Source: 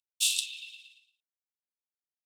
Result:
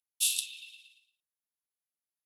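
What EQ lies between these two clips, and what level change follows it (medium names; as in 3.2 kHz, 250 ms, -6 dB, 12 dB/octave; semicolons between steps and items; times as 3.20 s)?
peaking EQ 11 kHz +15 dB 0.22 oct; -4.0 dB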